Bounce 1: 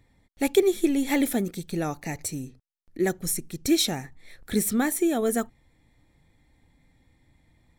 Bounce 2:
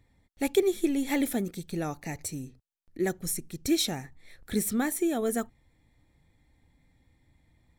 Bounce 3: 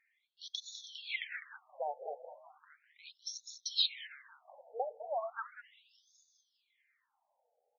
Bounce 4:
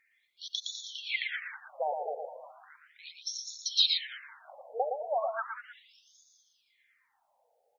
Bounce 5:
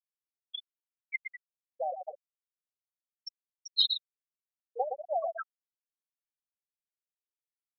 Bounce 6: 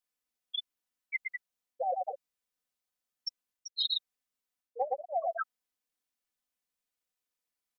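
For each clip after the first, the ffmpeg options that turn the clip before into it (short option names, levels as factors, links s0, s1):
-af "equalizer=f=71:w=0.99:g=3,volume=0.631"
-filter_complex "[0:a]asplit=2[s0][s1];[s1]asplit=8[s2][s3][s4][s5][s6][s7][s8][s9];[s2]adelay=203,afreqshift=-130,volume=0.316[s10];[s3]adelay=406,afreqshift=-260,volume=0.195[s11];[s4]adelay=609,afreqshift=-390,volume=0.122[s12];[s5]adelay=812,afreqshift=-520,volume=0.075[s13];[s6]adelay=1015,afreqshift=-650,volume=0.0468[s14];[s7]adelay=1218,afreqshift=-780,volume=0.0288[s15];[s8]adelay=1421,afreqshift=-910,volume=0.018[s16];[s9]adelay=1624,afreqshift=-1040,volume=0.0111[s17];[s10][s11][s12][s13][s14][s15][s16][s17]amix=inputs=8:normalize=0[s18];[s0][s18]amix=inputs=2:normalize=0,afftfilt=real='re*between(b*sr/1024,600*pow(4900/600,0.5+0.5*sin(2*PI*0.36*pts/sr))/1.41,600*pow(4900/600,0.5+0.5*sin(2*PI*0.36*pts/sr))*1.41)':imag='im*between(b*sr/1024,600*pow(4900/600,0.5+0.5*sin(2*PI*0.36*pts/sr))/1.41,600*pow(4900/600,0.5+0.5*sin(2*PI*0.36*pts/sr))*1.41)':win_size=1024:overlap=0.75,volume=1.12"
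-af "aecho=1:1:115:0.562,volume=1.88"
-af "afftfilt=real='re*gte(hypot(re,im),0.158)':imag='im*gte(hypot(re,im),0.158)':win_size=1024:overlap=0.75"
-af "aecho=1:1:4:0.66,areverse,acompressor=threshold=0.02:ratio=6,areverse,volume=1.78"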